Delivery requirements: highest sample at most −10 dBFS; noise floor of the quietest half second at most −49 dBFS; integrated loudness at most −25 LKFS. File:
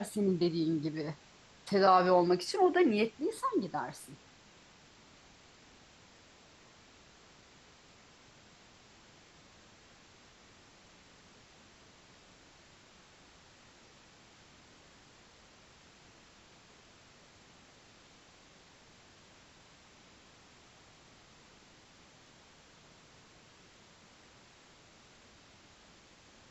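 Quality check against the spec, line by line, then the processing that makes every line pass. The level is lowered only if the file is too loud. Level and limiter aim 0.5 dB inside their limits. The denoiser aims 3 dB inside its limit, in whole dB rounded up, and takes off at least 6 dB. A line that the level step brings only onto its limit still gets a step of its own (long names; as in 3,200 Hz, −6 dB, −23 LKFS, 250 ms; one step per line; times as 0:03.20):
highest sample −12.5 dBFS: in spec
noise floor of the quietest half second −60 dBFS: in spec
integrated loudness −30.0 LKFS: in spec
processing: no processing needed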